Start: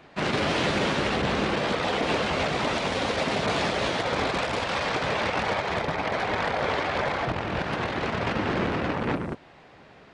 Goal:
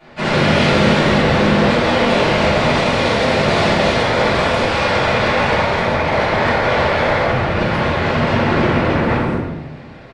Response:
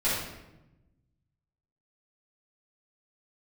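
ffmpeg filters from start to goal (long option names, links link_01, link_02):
-filter_complex "[0:a]asplit=2[link_01][link_02];[link_02]adelay=130,highpass=300,lowpass=3400,asoftclip=type=hard:threshold=-25dB,volume=-10dB[link_03];[link_01][link_03]amix=inputs=2:normalize=0[link_04];[1:a]atrim=start_sample=2205[link_05];[link_04][link_05]afir=irnorm=-1:irlink=0,volume=-1dB"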